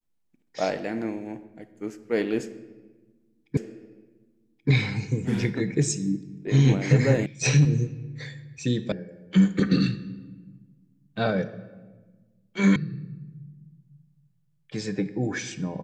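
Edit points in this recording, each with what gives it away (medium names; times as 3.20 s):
3.57 s: repeat of the last 1.13 s
7.26 s: sound stops dead
8.92 s: sound stops dead
12.76 s: sound stops dead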